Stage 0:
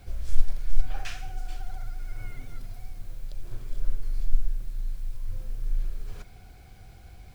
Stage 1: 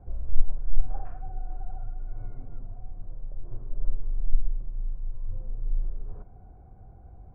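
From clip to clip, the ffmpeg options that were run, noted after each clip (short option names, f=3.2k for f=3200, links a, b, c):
-af "lowpass=f=1k:w=0.5412,lowpass=f=1k:w=1.3066"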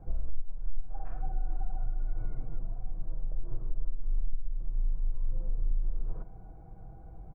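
-af "aecho=1:1:6.2:0.55,acompressor=threshold=-23dB:ratio=10,volume=1dB"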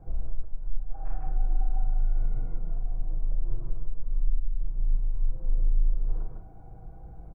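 -filter_complex "[0:a]asplit=2[a][b];[b]adelay=38,volume=-7.5dB[c];[a][c]amix=inputs=2:normalize=0,aecho=1:1:153:0.668"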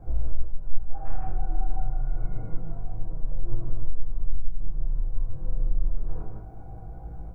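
-af "flanger=delay=17:depth=5.1:speed=0.28,volume=8.5dB"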